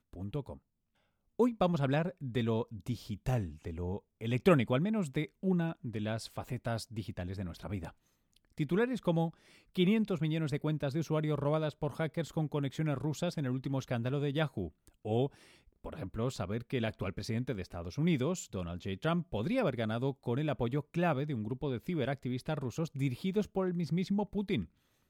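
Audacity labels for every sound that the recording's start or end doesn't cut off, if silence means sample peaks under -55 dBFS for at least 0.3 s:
1.390000	7.920000	sound
8.330000	24.660000	sound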